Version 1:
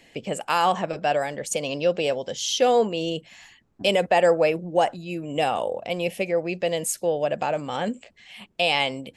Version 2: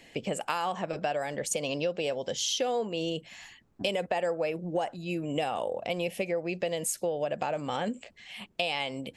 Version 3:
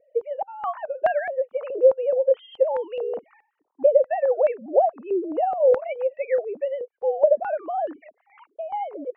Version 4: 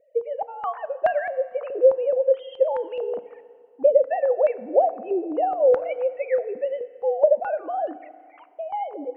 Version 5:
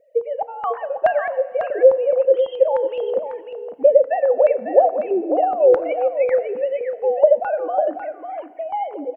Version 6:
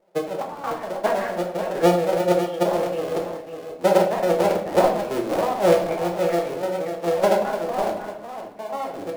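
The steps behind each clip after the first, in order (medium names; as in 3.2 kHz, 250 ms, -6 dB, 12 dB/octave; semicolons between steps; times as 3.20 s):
compression 6:1, threshold -27 dBFS, peak gain reduction 12 dB
formants replaced by sine waves; step-sequenced low-pass 4.7 Hz 460–1700 Hz; trim +2.5 dB
FDN reverb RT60 2.1 s, low-frequency decay 0.8×, high-frequency decay 0.8×, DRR 14 dB
delay 548 ms -8 dB; trim +4 dB
cycle switcher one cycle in 3, muted; simulated room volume 86 m³, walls mixed, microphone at 0.73 m; trim -5.5 dB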